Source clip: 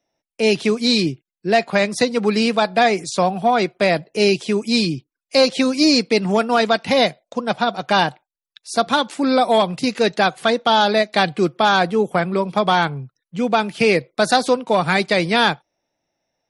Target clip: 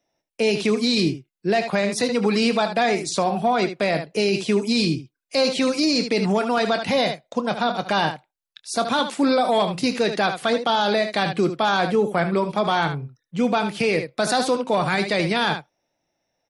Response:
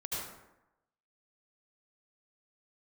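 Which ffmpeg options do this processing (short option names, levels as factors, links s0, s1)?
-af "aecho=1:1:25|75:0.188|0.224,alimiter=limit=0.266:level=0:latency=1:release=22"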